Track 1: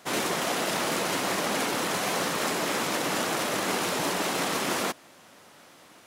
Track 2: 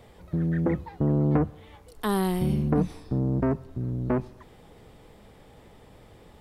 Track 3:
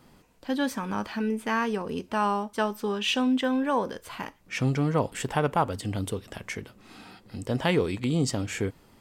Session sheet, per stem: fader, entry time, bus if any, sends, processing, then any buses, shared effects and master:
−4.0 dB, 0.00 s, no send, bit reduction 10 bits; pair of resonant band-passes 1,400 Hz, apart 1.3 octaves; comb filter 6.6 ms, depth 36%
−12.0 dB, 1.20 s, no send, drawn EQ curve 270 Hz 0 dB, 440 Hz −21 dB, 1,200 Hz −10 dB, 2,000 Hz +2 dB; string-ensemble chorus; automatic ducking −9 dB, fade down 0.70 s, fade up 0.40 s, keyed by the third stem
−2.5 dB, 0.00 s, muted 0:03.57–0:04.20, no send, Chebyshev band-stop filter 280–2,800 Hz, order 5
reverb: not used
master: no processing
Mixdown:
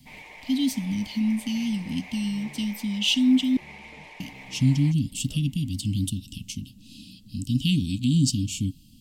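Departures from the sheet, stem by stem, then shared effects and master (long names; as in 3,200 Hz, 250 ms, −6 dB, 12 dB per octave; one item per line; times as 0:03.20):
stem 2: missing drawn EQ curve 270 Hz 0 dB, 440 Hz −21 dB, 1,200 Hz −10 dB, 2,000 Hz +2 dB
stem 3 −2.5 dB → +6.5 dB
master: extra parametric band 910 Hz −11 dB 0.96 octaves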